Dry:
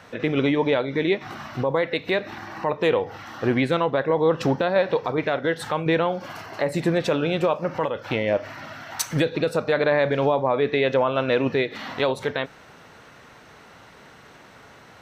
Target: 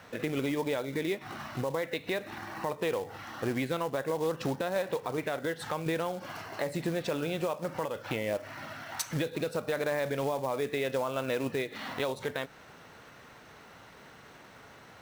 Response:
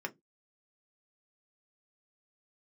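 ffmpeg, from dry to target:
-af "acompressor=threshold=0.0398:ratio=2,acrusher=bits=4:mode=log:mix=0:aa=0.000001,volume=0.596"

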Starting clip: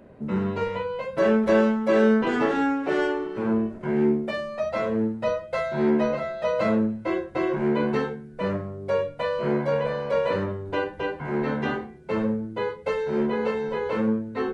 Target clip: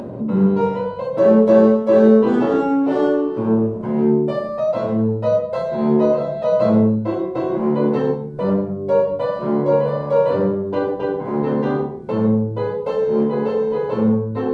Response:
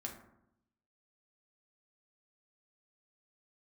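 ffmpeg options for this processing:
-filter_complex "[1:a]atrim=start_sample=2205,atrim=end_sample=3969,asetrate=22491,aresample=44100[s0];[0:a][s0]afir=irnorm=-1:irlink=0,acompressor=mode=upward:threshold=0.0631:ratio=2.5,equalizer=f=125:t=o:w=1:g=8,equalizer=f=250:t=o:w=1:g=8,equalizer=f=500:t=o:w=1:g=7,equalizer=f=1000:t=o:w=1:g=8,equalizer=f=2000:t=o:w=1:g=-6,equalizer=f=4000:t=o:w=1:g=4,volume=0.596"

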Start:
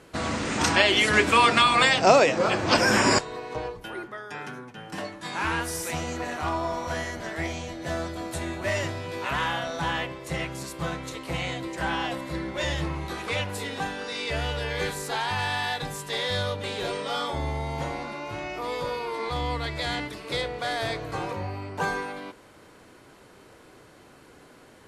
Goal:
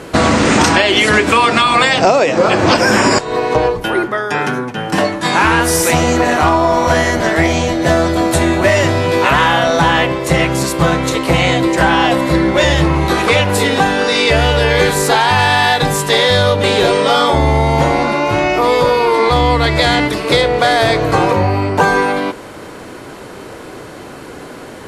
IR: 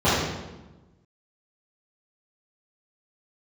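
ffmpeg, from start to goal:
-af "equalizer=f=410:w=0.37:g=3.5,acompressor=threshold=0.0562:ratio=20,apsyclip=9.44,volume=0.841"

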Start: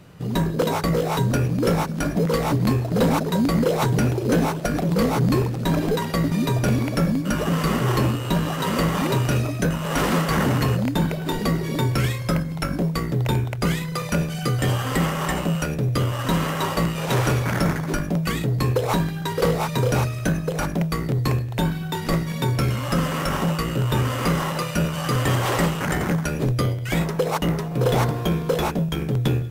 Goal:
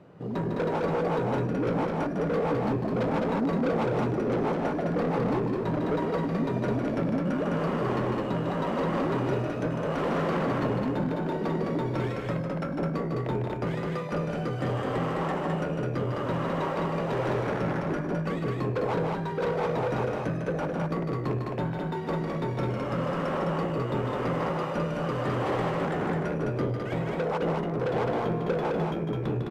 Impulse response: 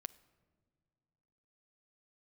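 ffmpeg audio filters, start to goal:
-filter_complex "[0:a]bandpass=f=490:t=q:w=0.77:csg=0,asoftclip=type=tanh:threshold=0.0562,asplit=2[s0][s1];[s1]aecho=0:1:151.6|209.9:0.501|0.708[s2];[s0][s2]amix=inputs=2:normalize=0"

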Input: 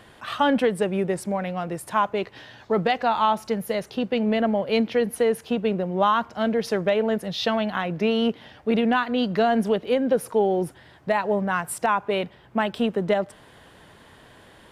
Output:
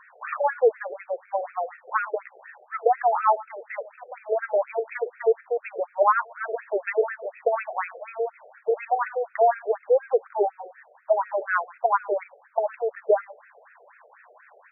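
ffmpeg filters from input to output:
-af "aecho=1:1:109:0.106,afftfilt=real='re*between(b*sr/1024,540*pow(1900/540,0.5+0.5*sin(2*PI*4.1*pts/sr))/1.41,540*pow(1900/540,0.5+0.5*sin(2*PI*4.1*pts/sr))*1.41)':imag='im*between(b*sr/1024,540*pow(1900/540,0.5+0.5*sin(2*PI*4.1*pts/sr))/1.41,540*pow(1900/540,0.5+0.5*sin(2*PI*4.1*pts/sr))*1.41)':win_size=1024:overlap=0.75,volume=1.58"

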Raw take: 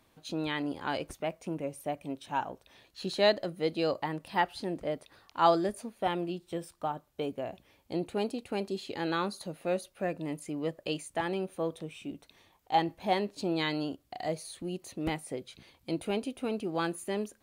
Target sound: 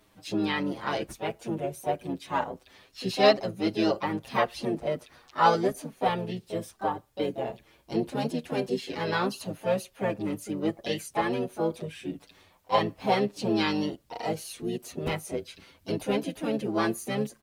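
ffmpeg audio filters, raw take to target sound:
-filter_complex "[0:a]asplit=3[s0][s1][s2];[s1]asetrate=29433,aresample=44100,atempo=1.49831,volume=0.501[s3];[s2]asetrate=55563,aresample=44100,atempo=0.793701,volume=0.447[s4];[s0][s3][s4]amix=inputs=3:normalize=0,asplit=2[s5][s6];[s6]adelay=7.4,afreqshift=0.31[s7];[s5][s7]amix=inputs=2:normalize=1,volume=1.88"

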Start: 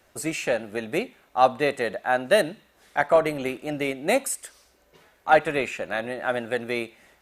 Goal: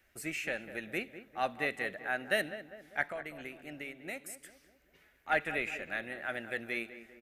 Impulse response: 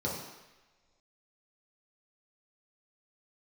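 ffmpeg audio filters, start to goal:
-filter_complex "[0:a]equalizer=f=125:t=o:w=1:g=-7,equalizer=f=250:t=o:w=1:g=-4,equalizer=f=500:t=o:w=1:g=-8,equalizer=f=1000:t=o:w=1:g=-12,equalizer=f=2000:t=o:w=1:g=5,equalizer=f=4000:t=o:w=1:g=-6,equalizer=f=8000:t=o:w=1:g=-7,asettb=1/sr,asplit=3[s0][s1][s2];[s0]atrim=end=3.084[s3];[s1]atrim=start=3.08:end=5.3,asetpts=PTS-STARTPTS,afade=t=in:d=0.004:c=qsin,afade=t=out:st=2.216:d=0.004:c=qsin,acompressor=threshold=0.00891:ratio=2[s4];[s2]atrim=start=5.296[s5];[s3][s4]acrossfade=d=0.004:c1=hsin:c2=qsin[s6];[s6][s5]acrossfade=d=0.004:c1=qsin:c2=hsin,asplit=2[s7][s8];[s8]adelay=199,lowpass=f=1600:p=1,volume=0.266,asplit=2[s9][s10];[s10]adelay=199,lowpass=f=1600:p=1,volume=0.52,asplit=2[s11][s12];[s12]adelay=199,lowpass=f=1600:p=1,volume=0.52,asplit=2[s13][s14];[s14]adelay=199,lowpass=f=1600:p=1,volume=0.52,asplit=2[s15][s16];[s16]adelay=199,lowpass=f=1600:p=1,volume=0.52,asplit=2[s17][s18];[s18]adelay=199,lowpass=f=1600:p=1,volume=0.52[s19];[s7][s9][s11][s13][s15][s17][s19]amix=inputs=7:normalize=0,volume=0.596"

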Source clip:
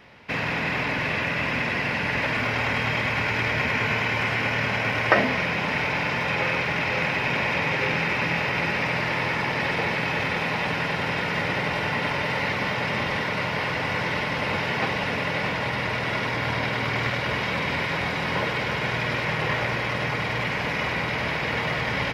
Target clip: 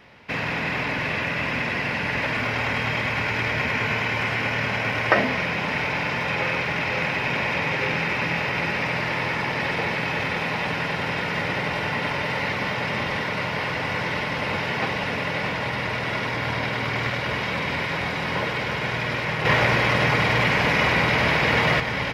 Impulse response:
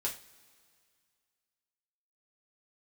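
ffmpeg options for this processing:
-filter_complex "[0:a]asettb=1/sr,asplit=3[s0][s1][s2];[s0]atrim=end=19.454[s3];[s1]atrim=start=19.45:end=21.8,asetpts=PTS-STARTPTS,afade=t=in:d=0.004:c=qsin,afade=t=out:st=2.346:d=0.004:c=qsin,acontrast=66[s4];[s2]atrim=start=21.796[s5];[s3][s4]acrossfade=d=0.004:c1=hsin:c2=qsin[s6];[s6][s5]acrossfade=d=0.004:c1=qsin:c2=hsin"

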